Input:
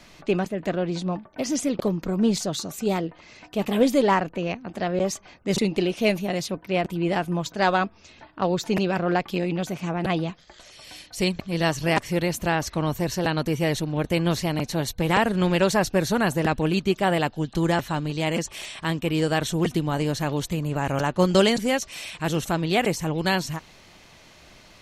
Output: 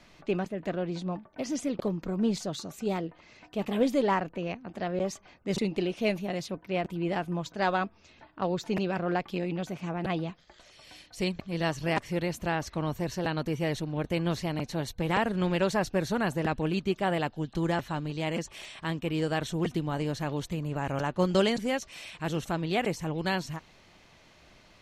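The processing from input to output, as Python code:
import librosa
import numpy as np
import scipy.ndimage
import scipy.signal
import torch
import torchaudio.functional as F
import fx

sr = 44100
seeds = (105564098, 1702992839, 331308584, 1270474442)

y = fx.high_shelf(x, sr, hz=6200.0, db=-8.0)
y = F.gain(torch.from_numpy(y), -6.0).numpy()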